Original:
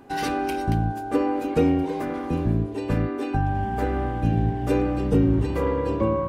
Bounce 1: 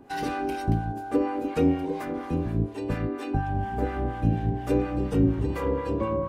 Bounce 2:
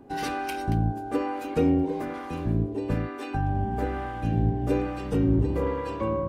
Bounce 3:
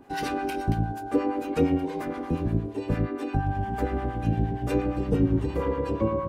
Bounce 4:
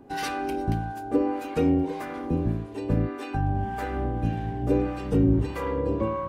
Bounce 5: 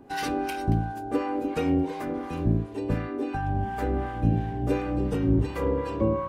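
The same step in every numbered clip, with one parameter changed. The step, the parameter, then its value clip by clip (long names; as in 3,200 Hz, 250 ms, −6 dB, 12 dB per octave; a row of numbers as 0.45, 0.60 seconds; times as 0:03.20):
two-band tremolo in antiphase, speed: 4.2, 1.1, 8.6, 1.7, 2.8 Hertz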